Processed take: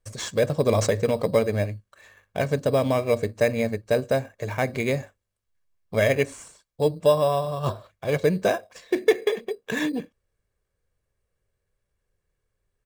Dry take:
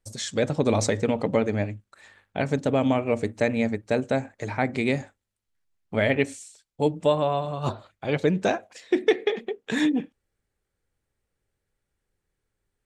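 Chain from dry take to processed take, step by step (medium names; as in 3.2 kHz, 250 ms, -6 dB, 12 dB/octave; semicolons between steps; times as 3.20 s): comb 1.8 ms, depth 48%; in parallel at -7.5 dB: sample-and-hold 10×; on the sum: trim -2.5 dB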